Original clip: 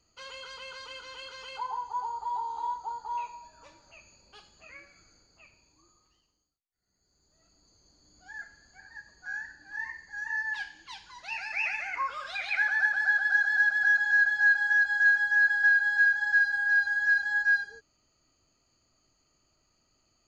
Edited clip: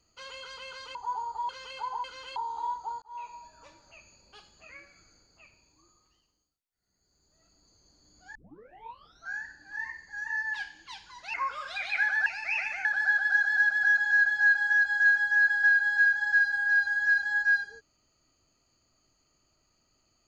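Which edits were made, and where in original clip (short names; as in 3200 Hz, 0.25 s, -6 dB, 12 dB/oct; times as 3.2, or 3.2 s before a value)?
0.95–1.27 swap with 1.82–2.36
3.02–3.37 fade in
8.35 tape start 0.97 s
11.34–11.93 move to 12.85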